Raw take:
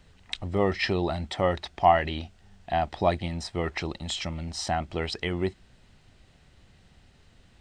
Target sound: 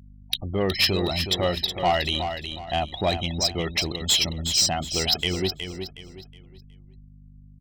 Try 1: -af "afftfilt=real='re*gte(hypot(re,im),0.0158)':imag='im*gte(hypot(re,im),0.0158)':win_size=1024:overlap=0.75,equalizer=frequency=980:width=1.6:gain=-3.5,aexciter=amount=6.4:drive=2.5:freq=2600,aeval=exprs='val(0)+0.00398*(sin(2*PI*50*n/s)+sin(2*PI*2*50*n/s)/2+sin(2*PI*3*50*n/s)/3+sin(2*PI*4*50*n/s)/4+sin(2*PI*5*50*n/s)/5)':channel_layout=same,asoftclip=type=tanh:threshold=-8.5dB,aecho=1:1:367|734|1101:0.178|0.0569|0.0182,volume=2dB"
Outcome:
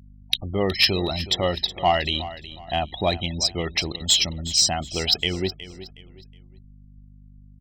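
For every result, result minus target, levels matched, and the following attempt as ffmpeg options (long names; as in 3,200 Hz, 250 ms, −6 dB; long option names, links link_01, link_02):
soft clipping: distortion −8 dB; echo-to-direct −7 dB
-af "afftfilt=real='re*gte(hypot(re,im),0.0158)':imag='im*gte(hypot(re,im),0.0158)':win_size=1024:overlap=0.75,equalizer=frequency=980:width=1.6:gain=-3.5,aexciter=amount=6.4:drive=2.5:freq=2600,aeval=exprs='val(0)+0.00398*(sin(2*PI*50*n/s)+sin(2*PI*2*50*n/s)/2+sin(2*PI*3*50*n/s)/3+sin(2*PI*4*50*n/s)/4+sin(2*PI*5*50*n/s)/5)':channel_layout=same,asoftclip=type=tanh:threshold=-16dB,aecho=1:1:367|734|1101:0.178|0.0569|0.0182,volume=2dB"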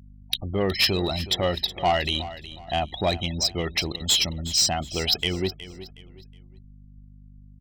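echo-to-direct −7 dB
-af "afftfilt=real='re*gte(hypot(re,im),0.0158)':imag='im*gte(hypot(re,im),0.0158)':win_size=1024:overlap=0.75,equalizer=frequency=980:width=1.6:gain=-3.5,aexciter=amount=6.4:drive=2.5:freq=2600,aeval=exprs='val(0)+0.00398*(sin(2*PI*50*n/s)+sin(2*PI*2*50*n/s)/2+sin(2*PI*3*50*n/s)/3+sin(2*PI*4*50*n/s)/4+sin(2*PI*5*50*n/s)/5)':channel_layout=same,asoftclip=type=tanh:threshold=-16dB,aecho=1:1:367|734|1101|1468:0.398|0.127|0.0408|0.013,volume=2dB"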